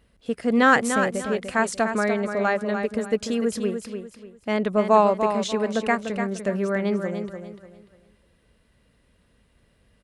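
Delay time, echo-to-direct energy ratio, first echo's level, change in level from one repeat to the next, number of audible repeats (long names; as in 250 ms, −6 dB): 295 ms, −7.0 dB, −7.5 dB, −10.5 dB, 3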